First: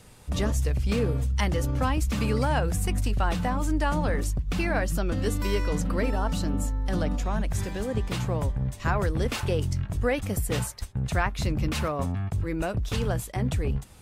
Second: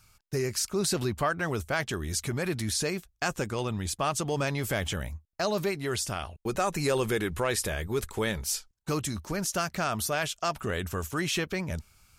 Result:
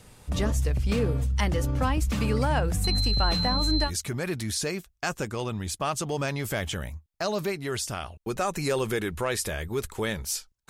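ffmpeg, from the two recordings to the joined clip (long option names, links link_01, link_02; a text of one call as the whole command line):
ffmpeg -i cue0.wav -i cue1.wav -filter_complex "[0:a]asettb=1/sr,asplit=3[link_01][link_02][link_03];[link_01]atrim=end=2.844[link_04];[link_02]atrim=start=2.84:end=3.91,asetpts=PTS-STARTPTS,afade=type=in:duration=0.004:curve=qsin,afade=type=out:start_time=1.066:duration=0.004:curve=qsin,aeval=exprs='val(0)+0.0447*sin(2*PI*4100*n/s)':channel_layout=same[link_05];[link_03]atrim=start=3.906[link_06];[link_04][link_05]acrossfade=duration=0.004:curve1=hsin:curve2=qsin[link_07];[link_07][link_06]acrossfade=duration=0.004:curve1=qsin:curve2=hsin,apad=whole_dur=10.69,atrim=end=10.69,atrim=end=3.91,asetpts=PTS-STARTPTS[link_08];[1:a]atrim=start=2.02:end=8.88,asetpts=PTS-STARTPTS[link_09];[link_08][link_09]acrossfade=duration=0.08:curve1=tri:curve2=tri" out.wav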